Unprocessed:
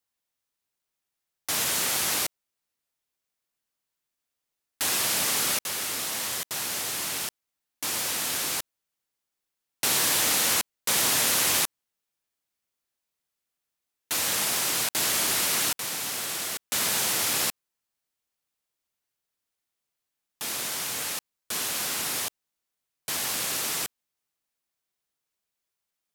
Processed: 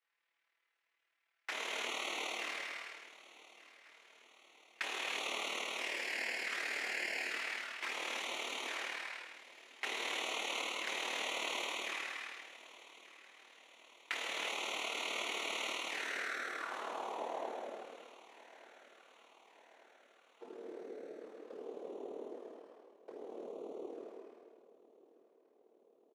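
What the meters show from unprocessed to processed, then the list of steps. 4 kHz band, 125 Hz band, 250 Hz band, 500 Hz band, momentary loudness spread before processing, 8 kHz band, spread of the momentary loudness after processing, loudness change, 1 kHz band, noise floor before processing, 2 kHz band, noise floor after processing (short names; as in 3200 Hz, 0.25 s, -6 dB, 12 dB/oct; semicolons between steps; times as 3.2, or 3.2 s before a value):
-12.5 dB, under -25 dB, -11.0 dB, -5.0 dB, 11 LU, -23.5 dB, 20 LU, -14.0 dB, -8.0 dB, -85 dBFS, -6.0 dB, -82 dBFS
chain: spectral trails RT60 1.04 s; envelope flanger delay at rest 6 ms, full sweep at -23.5 dBFS; dynamic EQ 2500 Hz, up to -6 dB, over -40 dBFS, Q 0.73; compressor 3:1, threshold -39 dBFS, peak gain reduction 12.5 dB; low-pass sweep 2100 Hz -> 440 Hz, 15.83–18.05; HPF 290 Hz 24 dB/oct; tilt +2.5 dB/oct; on a send: feedback echo 1.185 s, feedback 57%, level -19 dB; on the sum: non-linear reverb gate 0.38 s flat, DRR -1.5 dB; AM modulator 38 Hz, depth 35%; gain +2.5 dB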